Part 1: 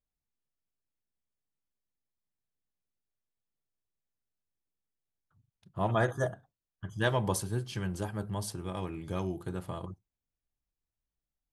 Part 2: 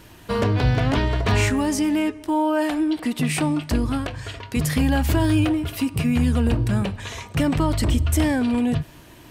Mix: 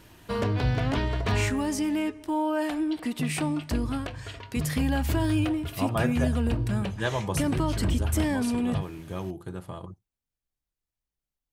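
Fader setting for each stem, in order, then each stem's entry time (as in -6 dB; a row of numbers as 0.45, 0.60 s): 0.0, -6.0 dB; 0.00, 0.00 s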